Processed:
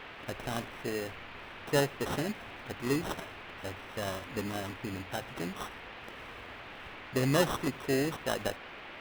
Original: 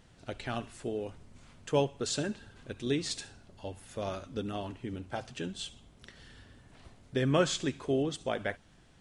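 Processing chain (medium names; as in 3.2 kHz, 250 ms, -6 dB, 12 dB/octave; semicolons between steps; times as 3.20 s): sample-rate reducer 2.3 kHz, jitter 0%; band noise 220–2800 Hz -47 dBFS; endings held to a fixed fall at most 440 dB/s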